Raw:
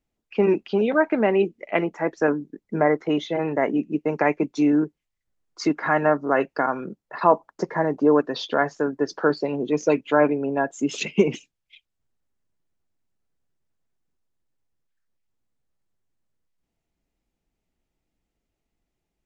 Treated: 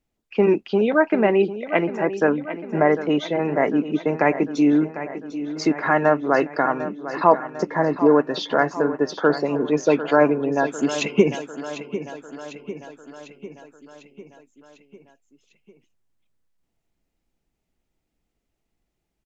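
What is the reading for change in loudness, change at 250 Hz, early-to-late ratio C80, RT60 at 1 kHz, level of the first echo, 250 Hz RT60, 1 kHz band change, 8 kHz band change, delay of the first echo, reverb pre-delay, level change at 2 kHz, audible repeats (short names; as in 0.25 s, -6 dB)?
+2.0 dB, +2.5 dB, none, none, -12.5 dB, none, +2.5 dB, n/a, 0.749 s, none, +2.5 dB, 5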